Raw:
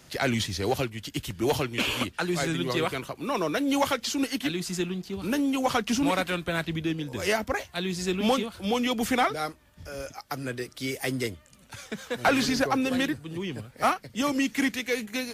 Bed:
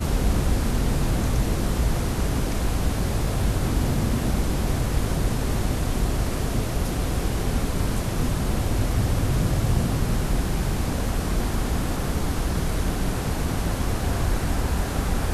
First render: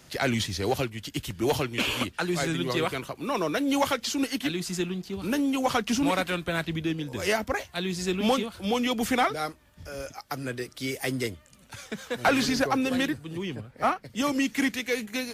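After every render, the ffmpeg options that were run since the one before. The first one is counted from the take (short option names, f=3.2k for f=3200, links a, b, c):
-filter_complex "[0:a]asplit=3[a][b][c];[a]afade=t=out:st=13.54:d=0.02[d];[b]highshelf=f=3.3k:g=-11,afade=t=in:st=13.54:d=0.02,afade=t=out:st=14.04:d=0.02[e];[c]afade=t=in:st=14.04:d=0.02[f];[d][e][f]amix=inputs=3:normalize=0"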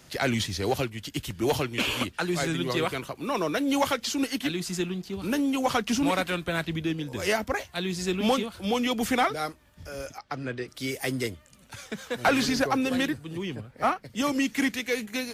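-filter_complex "[0:a]asettb=1/sr,asplit=3[a][b][c];[a]atrim=end=10.184[d];[b]atrim=start=10.18:end=10.68,asetpts=PTS-STARTPTS,afade=t=in:d=0.004:c=qsin,afade=t=out:st=0.496:d=0.004:c=qsin,lowpass=4k[e];[c]atrim=start=10.676[f];[d][e]acrossfade=d=0.004:c1=hsin:c2=qsin[g];[g][f]acrossfade=d=0.004:c1=qsin:c2=hsin"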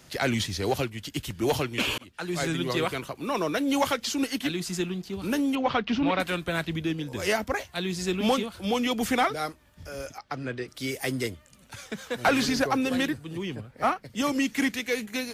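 -filter_complex "[0:a]asettb=1/sr,asplit=3[a][b][c];[a]atrim=end=5.554[d];[b]atrim=start=5.55:end=6.2,asetpts=PTS-STARTPTS,afade=t=in:d=0.004:c=qsin,afade=t=out:st=0.646:d=0.004:c=qsin,lowpass=f=3.9k:w=0.5412,lowpass=f=3.9k:w=1.3066[e];[c]atrim=start=6.196[f];[d][e]acrossfade=d=0.004:c1=hsin:c2=qsin[g];[g][f]acrossfade=d=0.004:c1=qsin:c2=hsin,asplit=2[h][i];[h]atrim=end=1.98,asetpts=PTS-STARTPTS,afade=t=out:st=1.976:d=0.004:c=hsin[j];[i]atrim=start=1.98,asetpts=PTS-STARTPTS,afade=t=in:d=0.47[k];[j][k]concat=n=2:v=0:a=1"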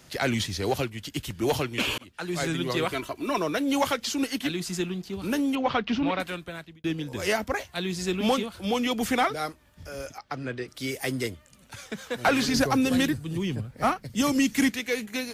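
-filter_complex "[0:a]asettb=1/sr,asplit=3[a][b][c];[a]atrim=end=2.934[d];[b]atrim=start=2.93:end=3.38,asetpts=PTS-STARTPTS,afade=t=in:d=0.004:c=qsin,afade=t=out:st=0.446:d=0.004:c=qsin,aecho=1:1:3:0.68,atrim=end_sample=19845[e];[c]atrim=start=3.376[f];[d][e]acrossfade=d=0.004:c1=hsin:c2=qsin[g];[g][f]acrossfade=d=0.004:c1=qsin:c2=hsin,asettb=1/sr,asplit=3[h][i][j];[h]atrim=end=12.544[k];[i]atrim=start=12.54:end=14.7,asetpts=PTS-STARTPTS,afade=t=in:d=0.004:c=qsin,afade=t=out:st=2.156:d=0.004:c=qsin,bass=f=250:g=8,treble=f=4k:g=6[l];[j]atrim=start=14.696[m];[k][l]acrossfade=d=0.004:c1=hsin:c2=qsin[n];[n][m]acrossfade=d=0.004:c1=qsin:c2=hsin,asplit=2[o][p];[o]atrim=end=6.84,asetpts=PTS-STARTPTS,afade=t=out:st=5.94:d=0.9[q];[p]atrim=start=6.84,asetpts=PTS-STARTPTS,afade=t=in:d=0.004:c=hsin[r];[q][r]concat=n=2:v=0:a=1"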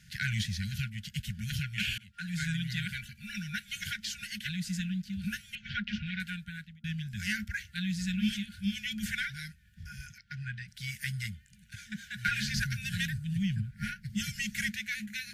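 -af "afftfilt=real='re*(1-between(b*sr/4096,220,1400))':imag='im*(1-between(b*sr/4096,220,1400))':win_size=4096:overlap=0.75,highshelf=f=2.4k:g=-8"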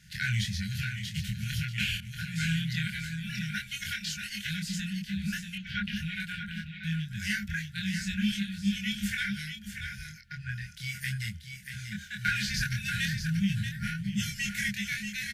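-filter_complex "[0:a]asplit=2[a][b];[b]adelay=25,volume=-2.5dB[c];[a][c]amix=inputs=2:normalize=0,aecho=1:1:635:0.422"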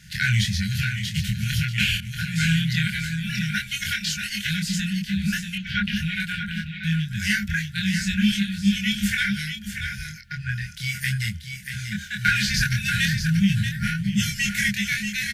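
-af "volume=8.5dB"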